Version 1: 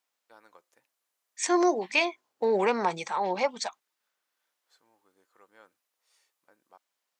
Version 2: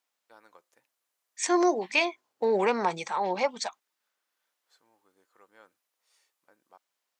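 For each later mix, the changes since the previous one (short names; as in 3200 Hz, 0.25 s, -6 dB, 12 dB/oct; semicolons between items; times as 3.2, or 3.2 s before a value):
none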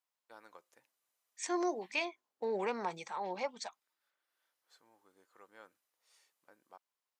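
second voice -10.5 dB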